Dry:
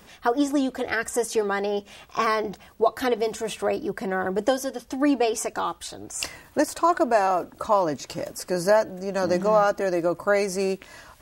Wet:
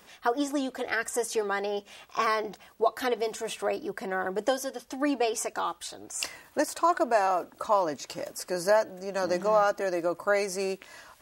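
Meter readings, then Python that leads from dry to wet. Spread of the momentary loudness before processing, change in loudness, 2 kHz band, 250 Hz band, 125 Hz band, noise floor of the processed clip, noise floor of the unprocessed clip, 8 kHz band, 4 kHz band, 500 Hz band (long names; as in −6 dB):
10 LU, −4.0 dB, −2.5 dB, −7.0 dB, −9.5 dB, −57 dBFS, −52 dBFS, −2.5 dB, −2.5 dB, −4.5 dB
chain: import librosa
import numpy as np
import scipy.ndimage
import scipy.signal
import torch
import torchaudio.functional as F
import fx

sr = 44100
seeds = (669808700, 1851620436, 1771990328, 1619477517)

y = fx.low_shelf(x, sr, hz=230.0, db=-11.5)
y = y * librosa.db_to_amplitude(-2.5)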